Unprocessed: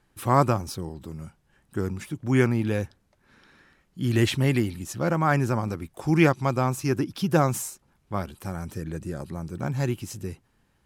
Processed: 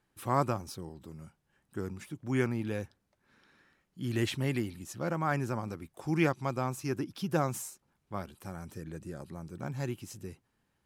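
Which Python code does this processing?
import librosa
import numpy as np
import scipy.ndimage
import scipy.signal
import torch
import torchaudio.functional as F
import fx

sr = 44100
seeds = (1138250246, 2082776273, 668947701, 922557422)

y = fx.low_shelf(x, sr, hz=62.0, db=-9.5)
y = y * librosa.db_to_amplitude(-8.0)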